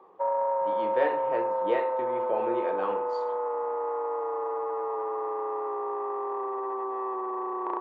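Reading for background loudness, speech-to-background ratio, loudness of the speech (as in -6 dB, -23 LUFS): -30.0 LUFS, -2.5 dB, -32.5 LUFS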